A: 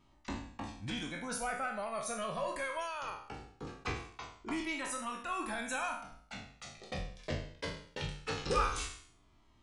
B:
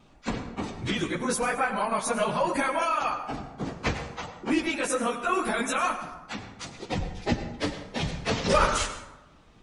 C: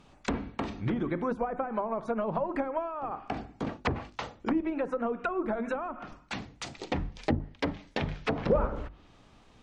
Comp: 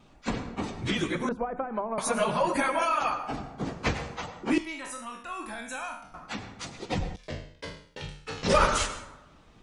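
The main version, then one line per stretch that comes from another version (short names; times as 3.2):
B
1.29–1.98 from C
4.58–6.14 from A
7.16–8.43 from A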